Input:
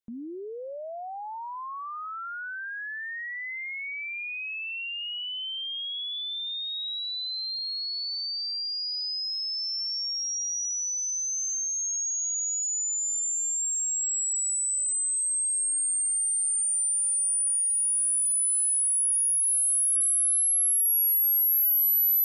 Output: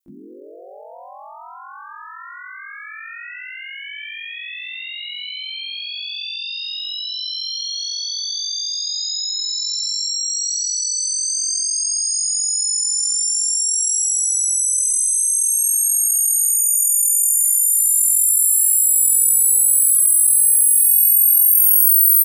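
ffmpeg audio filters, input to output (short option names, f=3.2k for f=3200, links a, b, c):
-filter_complex "[0:a]crystalizer=i=4:c=0,aeval=exprs='val(0)*sin(2*PI*22*n/s)':c=same,asplit=4[a][b][c][d];[b]asetrate=33038,aresample=44100,atempo=1.33484,volume=-7dB[e];[c]asetrate=35002,aresample=44100,atempo=1.25992,volume=-18dB[f];[d]asetrate=58866,aresample=44100,atempo=0.749154,volume=-5dB[g];[a][e][f][g]amix=inputs=4:normalize=0,asplit=2[h][i];[i]acompressor=threshold=-17dB:ratio=6,volume=-2dB[j];[h][j]amix=inputs=2:normalize=0,volume=-6.5dB"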